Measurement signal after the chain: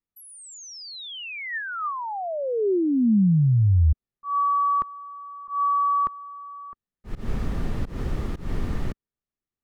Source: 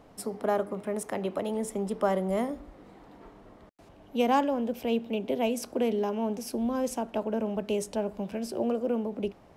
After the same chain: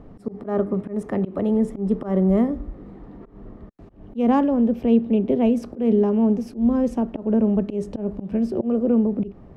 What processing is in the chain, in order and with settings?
RIAA equalisation playback
hollow resonant body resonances 210/380/1,200/1,800 Hz, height 6 dB, ringing for 20 ms
volume swells 149 ms

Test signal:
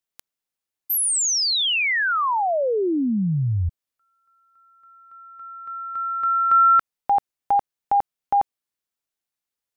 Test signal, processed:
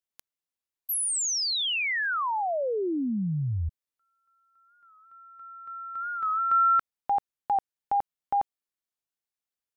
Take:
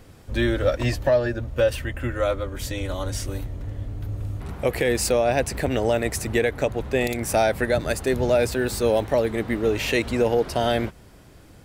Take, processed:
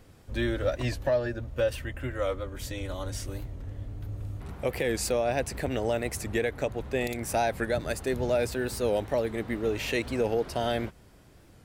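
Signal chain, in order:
wow of a warped record 45 rpm, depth 100 cents
level −6.5 dB

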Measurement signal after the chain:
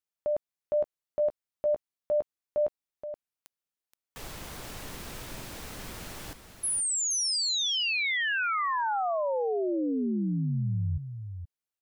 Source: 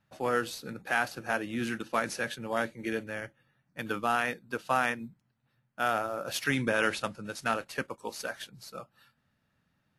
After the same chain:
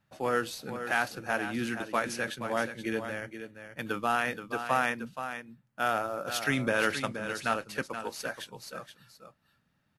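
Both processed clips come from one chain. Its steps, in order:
single-tap delay 475 ms −9.5 dB

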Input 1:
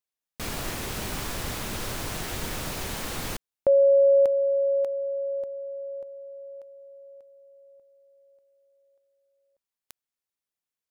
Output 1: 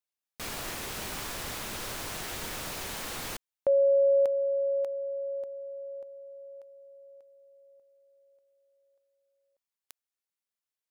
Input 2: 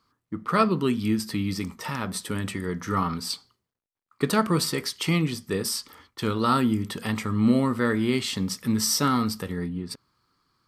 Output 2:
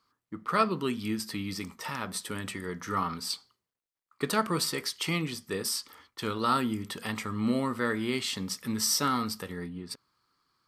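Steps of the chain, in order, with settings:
low-shelf EQ 330 Hz −8 dB
level −2.5 dB

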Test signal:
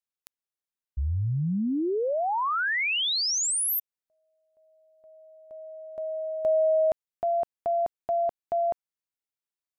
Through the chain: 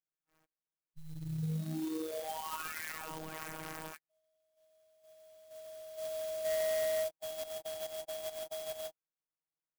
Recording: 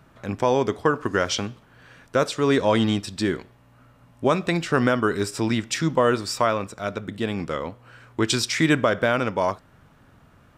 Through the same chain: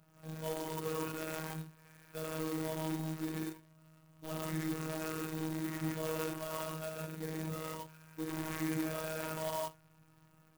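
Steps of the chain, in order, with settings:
reverb whose tail is shaped and stops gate 190 ms rising, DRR −0.5 dB
brickwall limiter −12.5 dBFS
hard clipping −22 dBFS
harmonic and percussive parts rebalanced percussive −13 dB
sample-rate reduction 4,000 Hz, jitter 0%
phases set to zero 158 Hz
converter with an unsteady clock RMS 0.054 ms
level −8.5 dB

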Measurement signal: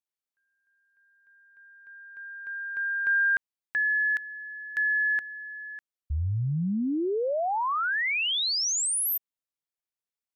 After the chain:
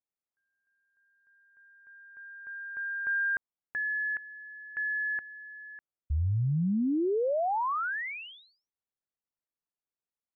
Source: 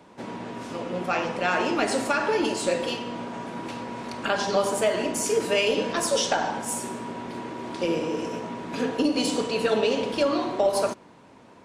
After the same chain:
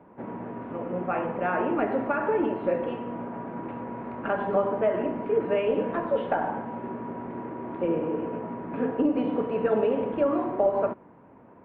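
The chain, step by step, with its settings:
Gaussian smoothing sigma 4.9 samples

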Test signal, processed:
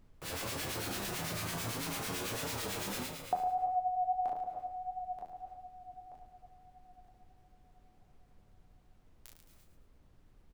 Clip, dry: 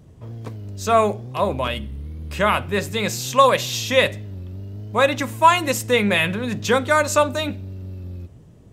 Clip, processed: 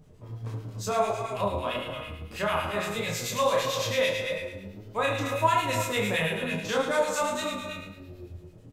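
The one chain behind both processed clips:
high-pass filter 99 Hz
on a send: flutter between parallel walls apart 6.2 metres, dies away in 0.77 s
on the sum: reverb whose tail is shaped and stops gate 330 ms rising, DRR 7.5 dB
two-band tremolo in antiphase 9 Hz, depth 70%, crossover 1,400 Hz
double-tracking delay 25 ms −4 dB
flanger 1.6 Hz, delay 6.3 ms, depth 5.3 ms, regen +46%
in parallel at +1.5 dB: downward compressor, threshold −30 dBFS
on the sum: background noise brown −52 dBFS
level −8 dB

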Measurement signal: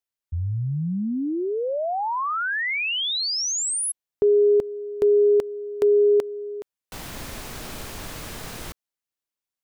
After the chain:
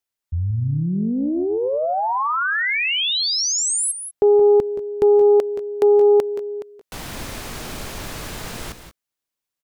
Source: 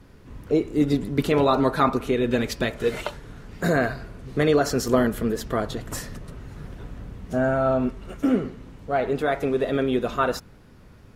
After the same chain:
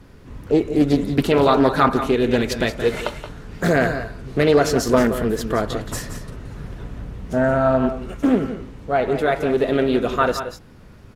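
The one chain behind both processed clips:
multi-tap delay 174/192 ms −11/−16 dB
highs frequency-modulated by the lows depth 0.27 ms
level +4 dB

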